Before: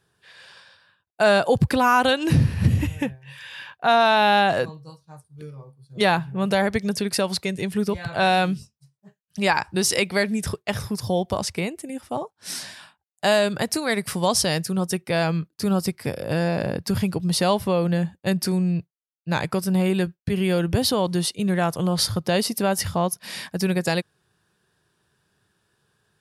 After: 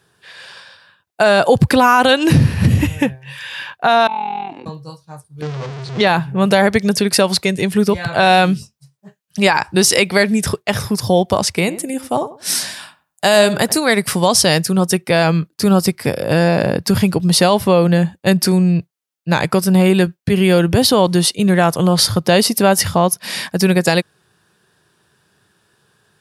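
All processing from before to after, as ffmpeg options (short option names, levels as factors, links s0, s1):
-filter_complex "[0:a]asettb=1/sr,asplit=3[s0][s1][s2];[s0]atrim=end=4.074[s3];[s1]atrim=start=4.07:end=4.66,asetpts=PTS-STARTPTS,afade=t=in:d=0.004:c=qsin,afade=t=out:st=0.586:d=0.004:c=qsin,deesser=0.6,asplit=3[s4][s5][s6];[s4]bandpass=f=300:t=q:w=8,volume=1[s7];[s5]bandpass=f=870:t=q:w=8,volume=0.501[s8];[s6]bandpass=f=2240:t=q:w=8,volume=0.355[s9];[s7][s8][s9]amix=inputs=3:normalize=0,tremolo=f=42:d=0.788[s10];[s2]atrim=start=4.656[s11];[s3][s10]acrossfade=d=0.004:c1=hsin:c2=qsin[s12];[s12][s11]acrossfade=d=0.004:c1=qsin:c2=hsin,asettb=1/sr,asplit=3[s13][s14][s15];[s13]atrim=end=5.424[s16];[s14]atrim=start=5.42:end=6.07,asetpts=PTS-STARTPTS,afade=t=in:d=0.004:c=qsin,afade=t=out:st=0.646:d=0.004:c=qsin,aeval=exprs='val(0)+0.5*0.0266*sgn(val(0))':c=same,lowpass=f=6100:w=0.5412,lowpass=f=6100:w=1.3066,acompressor=threshold=0.0794:ratio=2:attack=3.2:release=140:knee=1:detection=peak[s17];[s15]atrim=start=6.066[s18];[s16][s17]acrossfade=d=0.004:c1=hsin:c2=qsin[s19];[s19][s18]acrossfade=d=0.004:c1=qsin:c2=hsin,asettb=1/sr,asplit=3[s20][s21][s22];[s20]atrim=end=11.584[s23];[s21]atrim=start=11.58:end=13.79,asetpts=PTS-STARTPTS,afade=t=in:d=0.004:c=qsin,afade=t=out:st=2.206:d=0.004:c=qsin,highshelf=f=7300:g=7.5,asplit=2[s24][s25];[s25]adelay=95,lowpass=f=1400:p=1,volume=0.188,asplit=2[s26][s27];[s27]adelay=95,lowpass=f=1400:p=1,volume=0.24,asplit=2[s28][s29];[s29]adelay=95,lowpass=f=1400:p=1,volume=0.24[s30];[s24][s26][s28][s30]amix=inputs=4:normalize=0,atrim=end_sample=97461[s31];[s22]atrim=start=13.786[s32];[s23][s31]acrossfade=d=0.004:c1=hsin:c2=qsin[s33];[s33][s32]acrossfade=d=0.004:c1=qsin:c2=hsin,highpass=f=110:p=1,alimiter=level_in=3.55:limit=0.891:release=50:level=0:latency=1,volume=0.891"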